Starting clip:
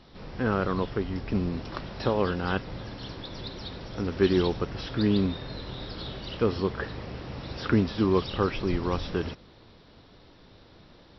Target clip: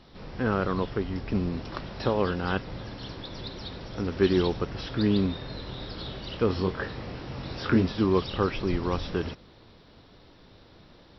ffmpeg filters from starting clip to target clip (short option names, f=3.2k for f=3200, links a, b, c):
-filter_complex "[0:a]asettb=1/sr,asplit=3[a][b][c];[a]atrim=end=6.474[d];[b]atrim=start=6.47:end=7.92,asetpts=PTS-STARTPTS,afade=t=in:d=0.004:c=qsin,afade=t=out:st=1.446:d=0.004:c=qsin,asplit=2[e][f];[f]adelay=22,volume=-5.5dB[g];[e][g]amix=inputs=2:normalize=0,atrim=end_sample=63945[h];[c]atrim=start=7.916[i];[d][h]acrossfade=d=0.004:c1=hsin:c2=qsin[j];[j][i]acrossfade=d=0.004:c1=qsin:c2=hsin"